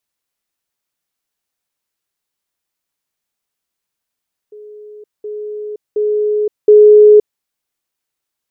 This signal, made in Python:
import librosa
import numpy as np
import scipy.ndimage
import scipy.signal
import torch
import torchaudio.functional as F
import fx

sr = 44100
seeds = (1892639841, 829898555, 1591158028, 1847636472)

y = fx.level_ladder(sr, hz=421.0, from_db=-32.0, step_db=10.0, steps=4, dwell_s=0.52, gap_s=0.2)